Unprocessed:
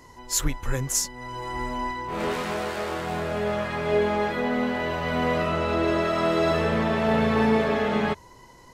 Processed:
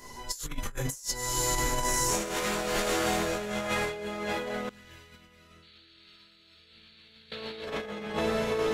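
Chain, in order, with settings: diffused feedback echo 1.111 s, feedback 43%, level -11 dB; 5.62–7.6 painted sound noise 1300–4600 Hz -27 dBFS; limiter -16.5 dBFS, peak gain reduction 7.5 dB; high shelf 3000 Hz +10.5 dB; reverb, pre-delay 5 ms, DRR -4.5 dB; negative-ratio compressor -23 dBFS, ratio -0.5; 4.69–7.32 passive tone stack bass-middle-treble 6-0-2; gain -8 dB

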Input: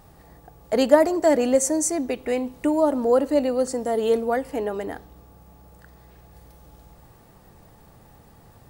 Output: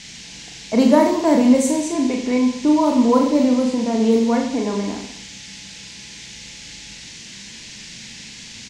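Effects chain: low-pass opened by the level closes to 740 Hz, open at -15.5 dBFS; small resonant body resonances 220/1000/2200/3900 Hz, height 15 dB, ringing for 35 ms; band noise 1800–7000 Hz -37 dBFS; on a send: reverse bouncing-ball echo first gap 40 ms, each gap 1.15×, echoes 5; on the sum: gain -3.5 dB

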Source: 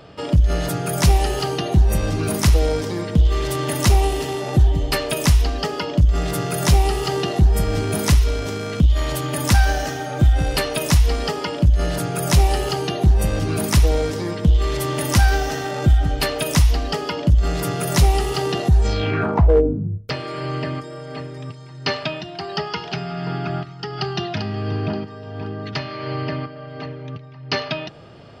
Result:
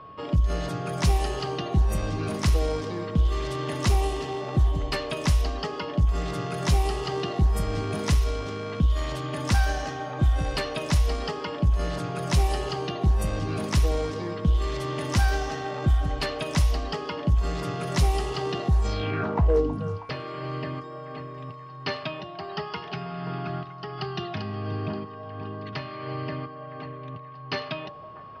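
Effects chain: whine 1100 Hz -36 dBFS; delay with a stepping band-pass 0.32 s, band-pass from 640 Hz, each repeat 0.7 oct, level -11 dB; low-pass opened by the level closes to 2800 Hz, open at -9.5 dBFS; gain -7 dB

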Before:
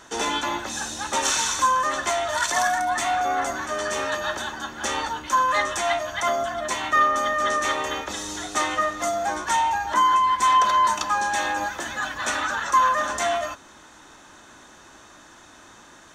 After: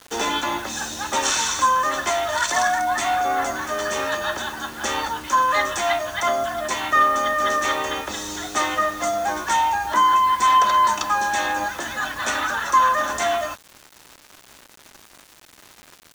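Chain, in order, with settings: LPF 8400 Hz; bit-crush 7-bit; gain +2 dB

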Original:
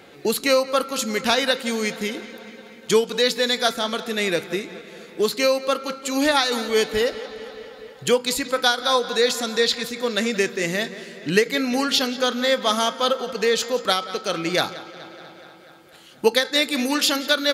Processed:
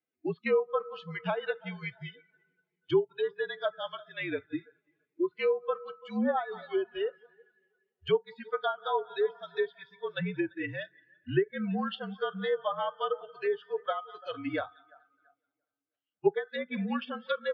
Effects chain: per-bin expansion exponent 1.5; treble ducked by the level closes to 1200 Hz, closed at -18.5 dBFS; mistuned SSB -52 Hz 180–3500 Hz; on a send: tape echo 0.339 s, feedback 41%, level -19.5 dB, low-pass 2300 Hz; on the sum: spectral noise reduction 21 dB; gain -5.5 dB

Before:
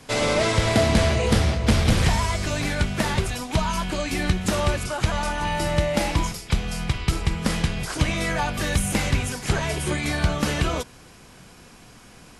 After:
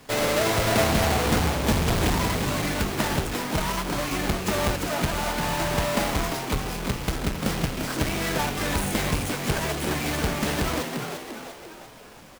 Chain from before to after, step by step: half-waves squared off; low shelf 270 Hz -6 dB; frequency-shifting echo 0.346 s, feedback 49%, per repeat +92 Hz, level -6 dB; gain -5 dB

